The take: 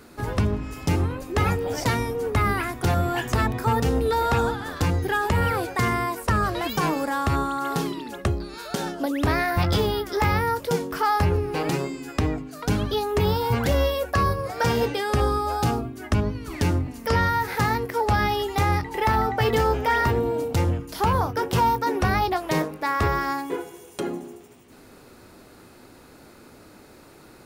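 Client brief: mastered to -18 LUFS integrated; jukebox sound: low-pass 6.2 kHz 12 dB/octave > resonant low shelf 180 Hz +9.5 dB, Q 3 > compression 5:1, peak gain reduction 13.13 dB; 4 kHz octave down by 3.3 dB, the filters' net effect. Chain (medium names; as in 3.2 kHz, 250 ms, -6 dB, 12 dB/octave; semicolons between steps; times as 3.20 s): low-pass 6.2 kHz 12 dB/octave; resonant low shelf 180 Hz +9.5 dB, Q 3; peaking EQ 4 kHz -3.5 dB; compression 5:1, threshold -19 dBFS; trim +6.5 dB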